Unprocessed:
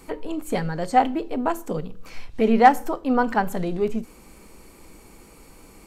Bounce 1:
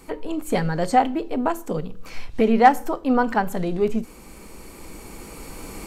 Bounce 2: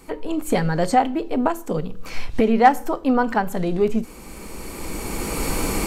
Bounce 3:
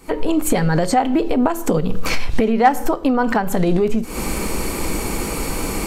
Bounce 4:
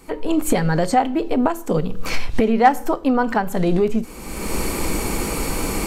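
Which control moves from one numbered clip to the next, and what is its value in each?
recorder AGC, rising by: 5.1, 13, 89, 33 dB/s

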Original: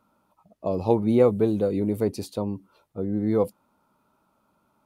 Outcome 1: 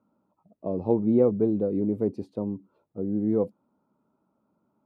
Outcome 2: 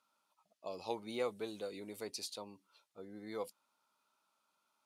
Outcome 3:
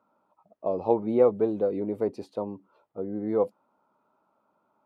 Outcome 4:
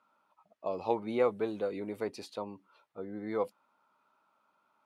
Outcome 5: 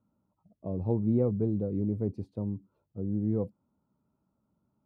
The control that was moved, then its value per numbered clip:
band-pass, frequency: 260, 5100, 680, 1800, 100 Hz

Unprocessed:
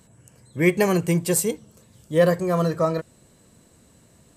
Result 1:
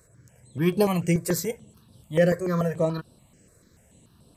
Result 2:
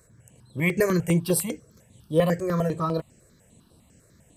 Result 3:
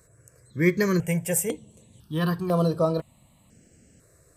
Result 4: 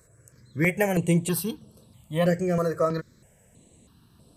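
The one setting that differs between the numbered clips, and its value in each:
step phaser, rate: 6.9, 10, 2, 3.1 Hz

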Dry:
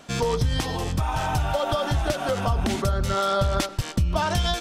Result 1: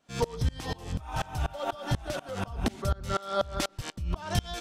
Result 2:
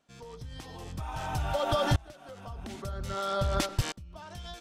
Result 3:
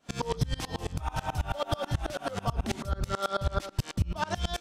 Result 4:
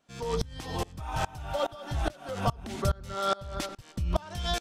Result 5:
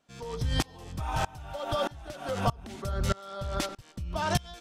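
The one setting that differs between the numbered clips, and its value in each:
dB-ramp tremolo, rate: 4.1, 0.51, 9.2, 2.4, 1.6 Hz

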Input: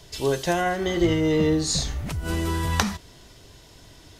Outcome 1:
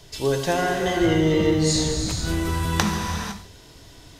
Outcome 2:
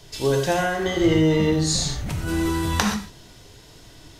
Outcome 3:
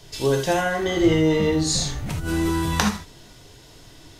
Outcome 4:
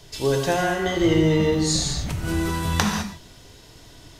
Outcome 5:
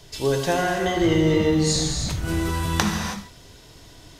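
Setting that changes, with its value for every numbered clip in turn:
non-linear reverb, gate: 0.53, 0.15, 0.1, 0.23, 0.35 s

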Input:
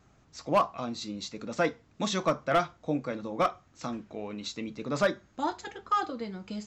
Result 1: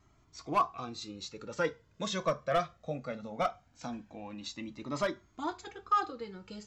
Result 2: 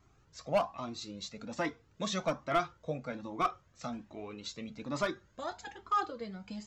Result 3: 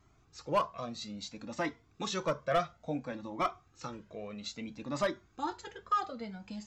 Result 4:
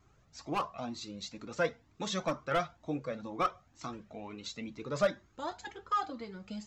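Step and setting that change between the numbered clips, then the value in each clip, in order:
cascading flanger, rate: 0.2, 1.2, 0.59, 2.1 Hz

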